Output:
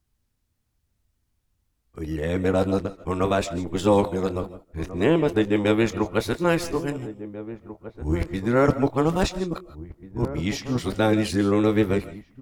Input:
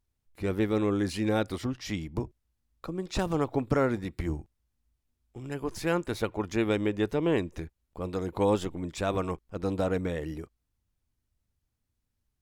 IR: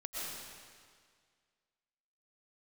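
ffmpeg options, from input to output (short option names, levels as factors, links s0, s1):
-filter_complex "[0:a]areverse,asplit=2[s0][s1];[s1]adelay=1691,volume=0.2,highshelf=f=4000:g=-38[s2];[s0][s2]amix=inputs=2:normalize=0,asplit=2[s3][s4];[1:a]atrim=start_sample=2205,atrim=end_sample=6615,adelay=25[s5];[s4][s5]afir=irnorm=-1:irlink=0,volume=0.335[s6];[s3][s6]amix=inputs=2:normalize=0,volume=2.11"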